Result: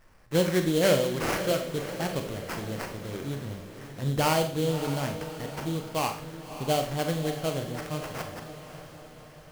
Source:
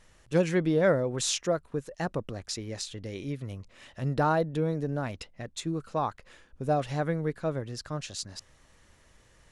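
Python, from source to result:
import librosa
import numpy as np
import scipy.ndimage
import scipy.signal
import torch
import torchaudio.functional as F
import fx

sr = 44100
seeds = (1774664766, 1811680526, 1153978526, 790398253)

y = fx.sample_hold(x, sr, seeds[0], rate_hz=3700.0, jitter_pct=20)
y = fx.echo_diffused(y, sr, ms=589, feedback_pct=54, wet_db=-11.0)
y = fx.rev_schroeder(y, sr, rt60_s=0.47, comb_ms=29, drr_db=5.5)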